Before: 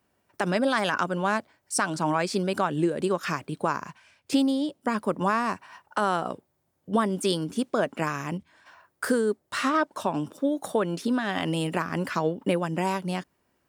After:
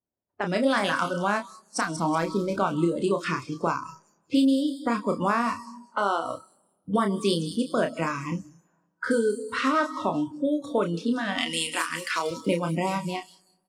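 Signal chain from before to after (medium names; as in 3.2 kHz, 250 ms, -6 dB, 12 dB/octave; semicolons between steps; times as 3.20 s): 1.80–2.58 s: median filter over 15 samples; in parallel at +1 dB: compression 12:1, threshold -37 dBFS, peak gain reduction 19 dB; on the sum: level-controlled noise filter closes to 800 Hz, open at -19 dBFS; 11.38–12.31 s: tilt EQ +4.5 dB/octave; doubling 30 ms -6 dB; feedback echo behind a high-pass 187 ms, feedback 41%, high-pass 5.6 kHz, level -4 dB; level rider gain up to 3.5 dB; 5.65–6.25 s: band-pass 220–7900 Hz; on a send at -13 dB: reverberation RT60 1.6 s, pre-delay 90 ms; on the sum: spectral noise reduction 21 dB; trim -5 dB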